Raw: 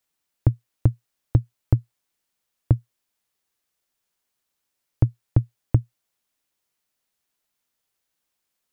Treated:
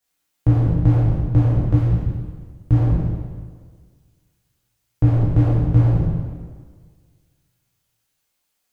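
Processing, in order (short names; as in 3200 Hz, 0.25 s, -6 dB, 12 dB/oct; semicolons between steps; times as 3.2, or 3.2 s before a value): spectral trails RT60 1.42 s; 1.76–2.73 bell 650 Hz -6.5 dB 1.9 oct; two-slope reverb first 0.56 s, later 2 s, from -17 dB, DRR -5 dB; gain -3.5 dB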